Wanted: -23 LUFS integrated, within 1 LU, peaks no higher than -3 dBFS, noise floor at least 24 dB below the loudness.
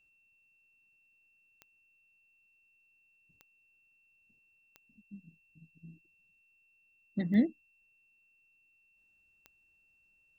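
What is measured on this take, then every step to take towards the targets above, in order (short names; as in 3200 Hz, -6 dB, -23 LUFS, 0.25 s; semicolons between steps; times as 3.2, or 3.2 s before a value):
clicks 5; steady tone 2700 Hz; tone level -67 dBFS; loudness -31.5 LUFS; peak -15.5 dBFS; loudness target -23.0 LUFS
-> de-click; notch 2700 Hz, Q 30; gain +8.5 dB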